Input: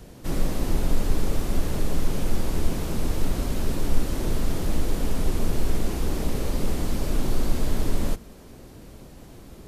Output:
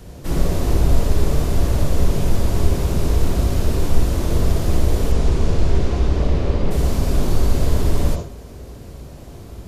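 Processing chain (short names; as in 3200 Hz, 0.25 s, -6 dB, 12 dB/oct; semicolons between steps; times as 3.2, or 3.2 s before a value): 5.11–6.7 LPF 8000 Hz -> 3200 Hz 12 dB/oct; on a send: reverb RT60 0.45 s, pre-delay 47 ms, DRR 3 dB; on the sum: gain +3.5 dB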